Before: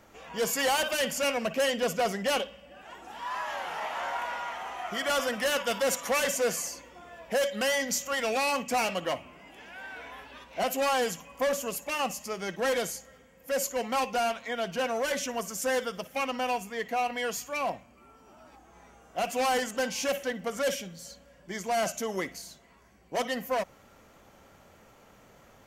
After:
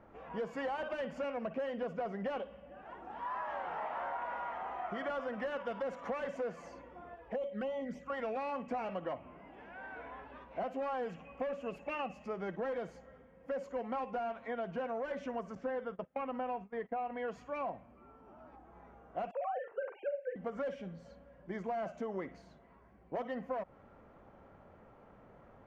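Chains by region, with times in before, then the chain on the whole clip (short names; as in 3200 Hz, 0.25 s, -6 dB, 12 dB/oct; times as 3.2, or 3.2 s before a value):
7.14–8.1 envelope flanger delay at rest 3.1 ms, full sweep at -25 dBFS + upward compressor, threshold -48 dBFS + dynamic EQ 5300 Hz, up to -7 dB, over -46 dBFS, Q 0.9
11.09–12.28 bell 2600 Hz +10.5 dB 0.28 oct + notch 1000 Hz, Q 8.5
15.55–17.28 gate -41 dBFS, range -20 dB + air absorption 180 m
19.31–20.36 sine-wave speech + air absorption 200 m + doubler 45 ms -7.5 dB
whole clip: LPF 1300 Hz 12 dB/oct; compressor, threshold -34 dBFS; gain -1 dB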